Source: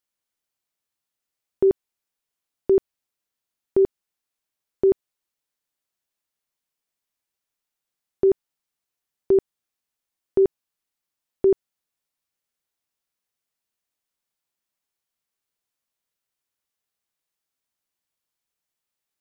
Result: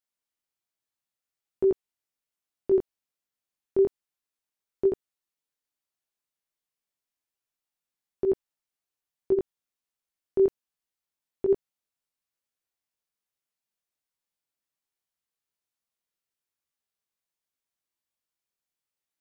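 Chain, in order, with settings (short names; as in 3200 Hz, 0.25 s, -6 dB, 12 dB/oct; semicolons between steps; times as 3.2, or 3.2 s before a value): chorus 1.2 Hz, delay 16 ms, depth 7.5 ms; gain -2.5 dB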